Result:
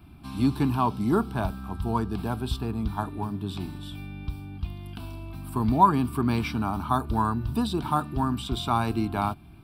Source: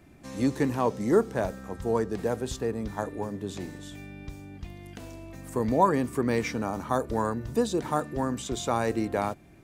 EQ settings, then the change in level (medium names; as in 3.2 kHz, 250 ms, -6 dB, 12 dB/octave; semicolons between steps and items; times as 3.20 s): peaking EQ 67 Hz +5.5 dB 0.97 oct; static phaser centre 1.9 kHz, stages 6; +5.5 dB